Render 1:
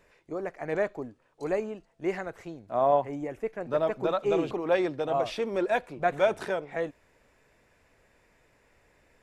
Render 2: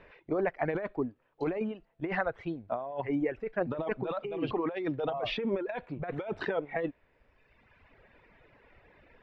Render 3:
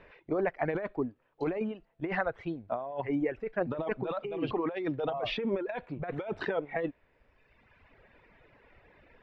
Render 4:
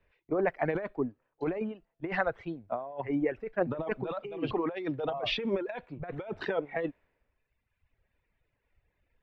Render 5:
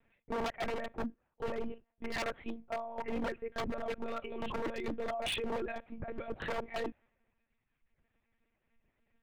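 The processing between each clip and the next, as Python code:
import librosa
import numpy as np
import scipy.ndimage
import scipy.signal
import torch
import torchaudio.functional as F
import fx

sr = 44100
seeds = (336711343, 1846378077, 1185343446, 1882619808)

y1 = scipy.signal.sosfilt(scipy.signal.butter(4, 3400.0, 'lowpass', fs=sr, output='sos'), x)
y1 = fx.dereverb_blind(y1, sr, rt60_s=1.5)
y1 = fx.over_compress(y1, sr, threshold_db=-34.0, ratio=-1.0)
y1 = F.gain(torch.from_numpy(y1), 2.0).numpy()
y2 = y1
y3 = fx.band_widen(y2, sr, depth_pct=70)
y4 = fx.lpc_monotone(y3, sr, seeds[0], pitch_hz=230.0, order=10)
y4 = 10.0 ** (-28.0 / 20.0) * (np.abs((y4 / 10.0 ** (-28.0 / 20.0) + 3.0) % 4.0 - 2.0) - 1.0)
y4 = F.gain(torch.from_numpy(y4), -1.5).numpy()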